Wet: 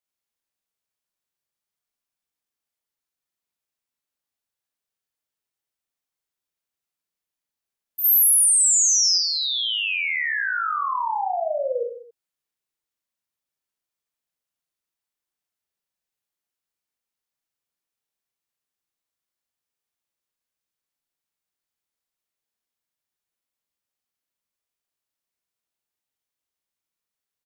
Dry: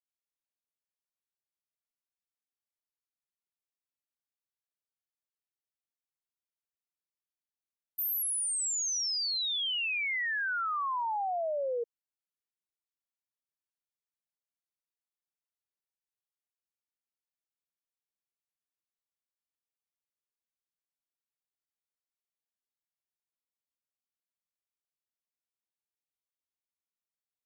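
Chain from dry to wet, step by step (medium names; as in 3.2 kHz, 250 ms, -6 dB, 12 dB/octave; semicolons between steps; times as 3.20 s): 8.04–9.18 s: tilt EQ +2.5 dB/octave; reverse bouncing-ball echo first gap 40 ms, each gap 1.15×, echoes 5; trim +5 dB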